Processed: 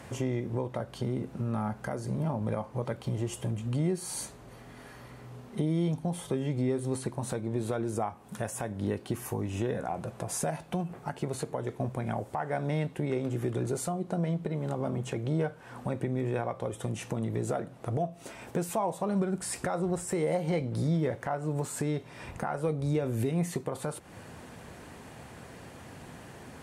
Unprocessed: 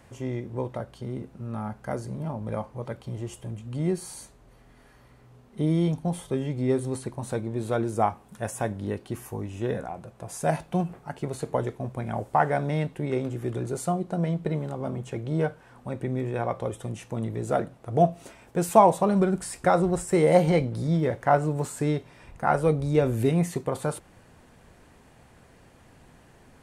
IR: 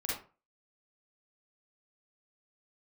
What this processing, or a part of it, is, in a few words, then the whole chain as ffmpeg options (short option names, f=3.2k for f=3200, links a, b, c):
podcast mastering chain: -af "highpass=79,deesser=0.6,acompressor=threshold=-38dB:ratio=2.5,alimiter=level_in=3.5dB:limit=-24dB:level=0:latency=1:release=233,volume=-3.5dB,volume=8.5dB" -ar 44100 -c:a libmp3lame -b:a 96k